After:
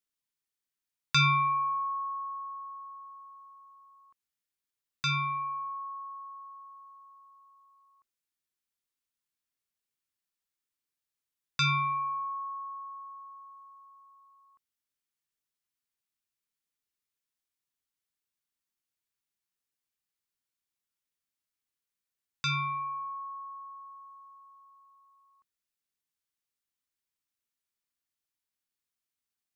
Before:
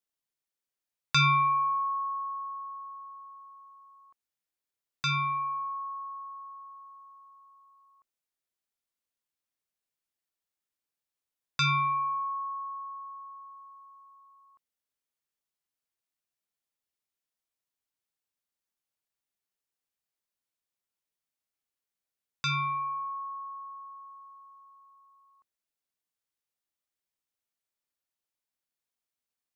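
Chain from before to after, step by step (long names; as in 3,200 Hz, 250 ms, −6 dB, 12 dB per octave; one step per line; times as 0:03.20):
parametric band 630 Hz −8.5 dB 0.98 octaves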